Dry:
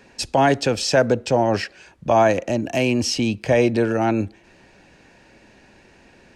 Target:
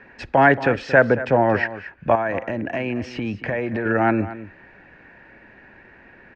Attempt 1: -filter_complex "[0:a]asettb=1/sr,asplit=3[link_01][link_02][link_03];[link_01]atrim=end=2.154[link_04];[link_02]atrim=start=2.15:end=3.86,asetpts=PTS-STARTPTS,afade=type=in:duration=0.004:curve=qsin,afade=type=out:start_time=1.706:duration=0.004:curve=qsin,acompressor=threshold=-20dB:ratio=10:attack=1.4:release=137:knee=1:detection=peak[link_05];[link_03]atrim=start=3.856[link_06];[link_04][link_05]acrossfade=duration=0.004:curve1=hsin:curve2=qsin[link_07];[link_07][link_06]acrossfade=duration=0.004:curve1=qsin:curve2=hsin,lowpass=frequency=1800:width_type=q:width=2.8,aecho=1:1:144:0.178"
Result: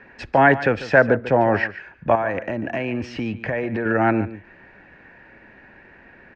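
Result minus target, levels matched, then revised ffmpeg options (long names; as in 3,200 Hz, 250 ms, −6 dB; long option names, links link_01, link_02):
echo 84 ms early
-filter_complex "[0:a]asettb=1/sr,asplit=3[link_01][link_02][link_03];[link_01]atrim=end=2.154[link_04];[link_02]atrim=start=2.15:end=3.86,asetpts=PTS-STARTPTS,afade=type=in:duration=0.004:curve=qsin,afade=type=out:start_time=1.706:duration=0.004:curve=qsin,acompressor=threshold=-20dB:ratio=10:attack=1.4:release=137:knee=1:detection=peak[link_05];[link_03]atrim=start=3.856[link_06];[link_04][link_05]acrossfade=duration=0.004:curve1=hsin:curve2=qsin[link_07];[link_07][link_06]acrossfade=duration=0.004:curve1=qsin:curve2=hsin,lowpass=frequency=1800:width_type=q:width=2.8,aecho=1:1:228:0.178"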